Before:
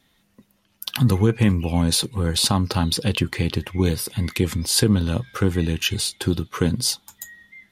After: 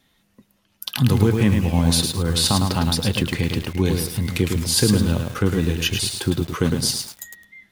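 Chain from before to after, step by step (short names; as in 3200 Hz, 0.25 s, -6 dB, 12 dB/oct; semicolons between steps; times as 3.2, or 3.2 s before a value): lo-fi delay 0.107 s, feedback 35%, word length 6-bit, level -4.5 dB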